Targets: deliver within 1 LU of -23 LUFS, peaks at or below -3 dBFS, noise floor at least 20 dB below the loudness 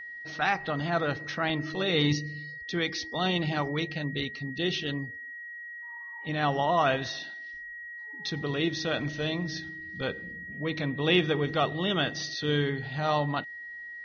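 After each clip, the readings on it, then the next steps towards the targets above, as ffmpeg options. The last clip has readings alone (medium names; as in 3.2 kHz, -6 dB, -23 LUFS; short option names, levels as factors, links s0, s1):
steady tone 1.9 kHz; tone level -39 dBFS; loudness -30.0 LUFS; peak level -12.0 dBFS; loudness target -23.0 LUFS
-> -af "bandreject=f=1900:w=30"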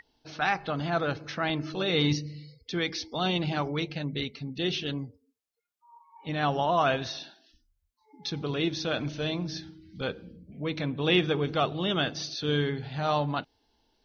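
steady tone not found; loudness -29.5 LUFS; peak level -12.0 dBFS; loudness target -23.0 LUFS
-> -af "volume=2.11"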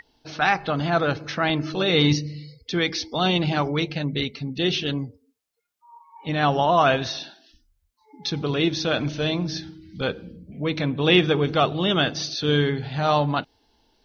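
loudness -23.0 LUFS; peak level -5.5 dBFS; noise floor -69 dBFS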